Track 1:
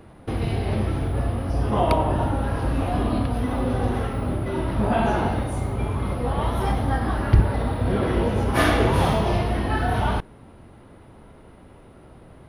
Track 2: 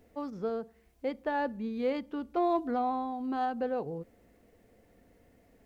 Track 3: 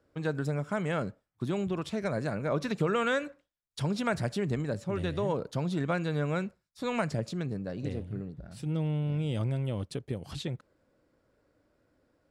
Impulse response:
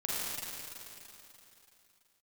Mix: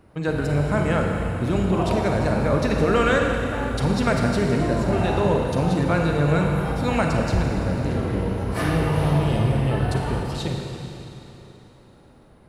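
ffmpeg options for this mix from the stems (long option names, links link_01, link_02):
-filter_complex "[0:a]volume=-10.5dB,asplit=2[link_01][link_02];[link_02]volume=-5dB[link_03];[1:a]adelay=2250,volume=-3dB[link_04];[2:a]volume=3dB,asplit=2[link_05][link_06];[link_06]volume=-3dB[link_07];[3:a]atrim=start_sample=2205[link_08];[link_03][link_07]amix=inputs=2:normalize=0[link_09];[link_09][link_08]afir=irnorm=-1:irlink=0[link_10];[link_01][link_04][link_05][link_10]amix=inputs=4:normalize=0,bandreject=frequency=3400:width=14"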